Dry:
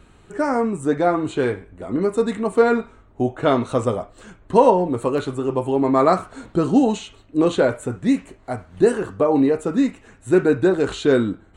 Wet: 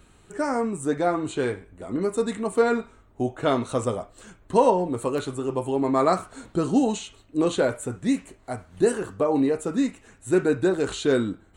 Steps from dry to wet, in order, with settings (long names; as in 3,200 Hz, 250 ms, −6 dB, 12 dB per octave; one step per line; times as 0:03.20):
high-shelf EQ 5,600 Hz +11 dB
level −5 dB